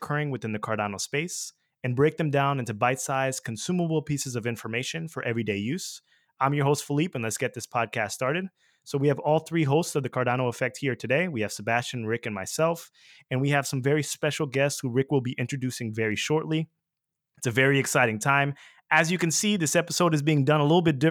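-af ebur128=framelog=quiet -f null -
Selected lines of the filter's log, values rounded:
Integrated loudness:
  I:         -26.1 LUFS
  Threshold: -36.4 LUFS
Loudness range:
  LRA:         4.9 LU
  Threshold: -46.8 LUFS
  LRA low:   -28.5 LUFS
  LRA high:  -23.6 LUFS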